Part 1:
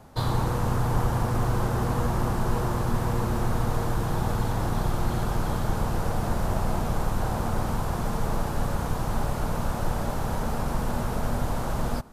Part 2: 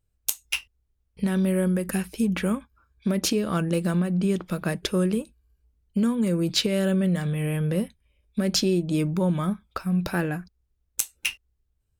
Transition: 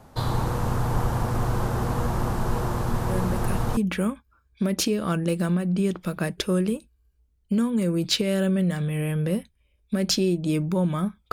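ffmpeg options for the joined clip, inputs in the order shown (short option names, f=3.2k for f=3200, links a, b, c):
-filter_complex "[1:a]asplit=2[a][b];[0:a]apad=whole_dur=11.32,atrim=end=11.32,atrim=end=3.772[c];[b]atrim=start=2.218:end=9.77[d];[a]atrim=start=1.54:end=2.22,asetpts=PTS-STARTPTS,volume=-6.5dB,afade=t=in:d=0.004:c=hsin,afade=t=out:st=0.676:d=0.004:c=hsin,adelay=136269S[e];[c][d]acrossfade=d=0.004:c1=hsin:c2=hsin[f];[f][e]amix=inputs=2:normalize=0"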